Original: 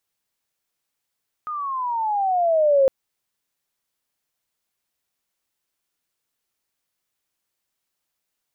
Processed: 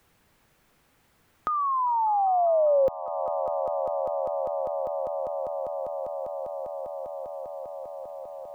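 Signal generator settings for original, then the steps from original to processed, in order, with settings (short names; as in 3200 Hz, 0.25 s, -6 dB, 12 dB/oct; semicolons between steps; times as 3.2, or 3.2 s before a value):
gliding synth tone sine, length 1.41 s, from 1250 Hz, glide -15 st, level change +14 dB, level -12 dB
low shelf 270 Hz +10 dB; swelling echo 0.199 s, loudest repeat 5, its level -17.5 dB; three-band squash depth 70%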